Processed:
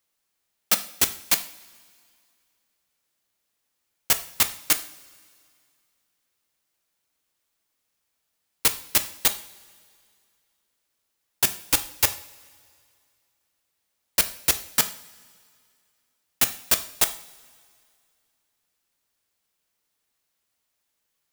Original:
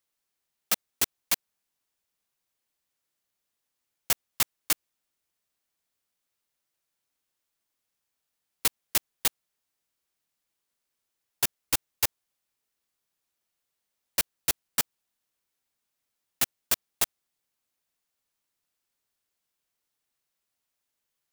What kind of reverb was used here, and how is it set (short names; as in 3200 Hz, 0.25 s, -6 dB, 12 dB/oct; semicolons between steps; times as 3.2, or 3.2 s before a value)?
two-slope reverb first 0.47 s, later 2.3 s, from -18 dB, DRR 8 dB; gain +5 dB